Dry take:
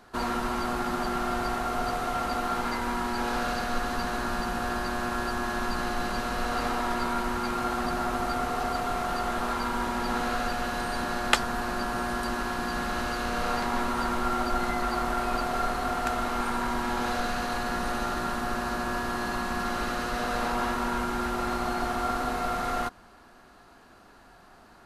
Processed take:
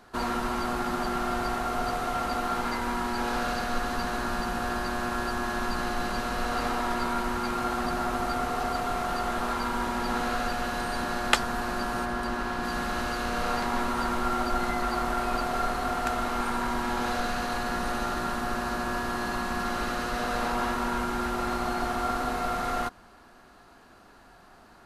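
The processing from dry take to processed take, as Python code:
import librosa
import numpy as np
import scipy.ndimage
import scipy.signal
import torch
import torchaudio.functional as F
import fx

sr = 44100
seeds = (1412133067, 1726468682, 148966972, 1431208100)

y = fx.high_shelf(x, sr, hz=fx.line((12.04, 4100.0), (12.63, 6700.0)), db=-8.0, at=(12.04, 12.63), fade=0.02)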